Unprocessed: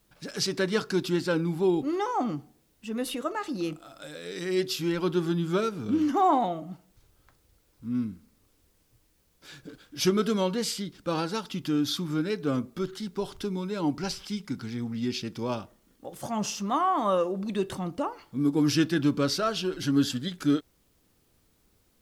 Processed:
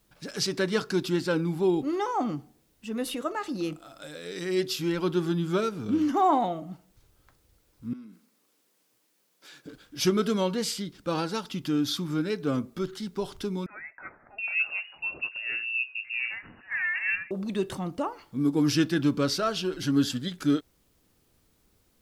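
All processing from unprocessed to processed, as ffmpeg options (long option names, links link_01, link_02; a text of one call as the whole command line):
ffmpeg -i in.wav -filter_complex "[0:a]asettb=1/sr,asplit=3[link_01][link_02][link_03];[link_01]atrim=end=7.934[link_04];[link_02]atrim=start=7.93:end=9.66,asetpts=PTS-STARTPTS,afade=type=in:duration=0.004:curve=qsin,afade=type=out:start_time=1.726:duration=0.004:curve=qsin,highpass=frequency=170:width=0.5412,highpass=frequency=170:width=1.3066,lowshelf=frequency=260:gain=-10,acompressor=threshold=-45dB:ratio=3:attack=3.2:release=140:knee=1:detection=peak[link_05];[link_03]atrim=start=9.656[link_06];[link_04][link_05]acrossfade=duration=0.004:curve1=hsin:curve2=qsin[link_07];[link_07][link_06]acrossfade=duration=0.004:curve1=qsin:curve2=hsin,asettb=1/sr,asplit=3[link_08][link_09][link_10];[link_08]atrim=end=13.664[link_11];[link_09]atrim=start=13.66:end=17.31,asetpts=PTS-STARTPTS,afade=type=in:duration=0.004:curve=qsin,afade=type=out:start_time=3.646:duration=0.004:curve=qsin,acrossover=split=860[link_12][link_13];[link_12]adelay=720[link_14];[link_14][link_13]amix=inputs=2:normalize=0,atrim=end_sample=160965,lowpass=frequency=2500:width_type=q:width=0.5098,lowpass=frequency=2500:width_type=q:width=0.6013,lowpass=frequency=2500:width_type=q:width=0.9,lowpass=frequency=2500:width_type=q:width=2.563,afreqshift=-2900[link_15];[link_10]atrim=start=17.306[link_16];[link_11][link_15]acrossfade=duration=0.004:curve1=hsin:curve2=qsin[link_17];[link_17][link_16]acrossfade=duration=0.004:curve1=qsin:curve2=hsin" out.wav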